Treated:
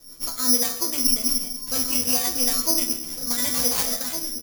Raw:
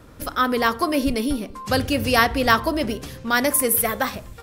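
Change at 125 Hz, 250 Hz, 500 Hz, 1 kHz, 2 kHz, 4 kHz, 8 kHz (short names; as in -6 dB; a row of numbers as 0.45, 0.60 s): -13.5, -7.5, -11.5, -14.5, -14.5, +3.0, +6.0 dB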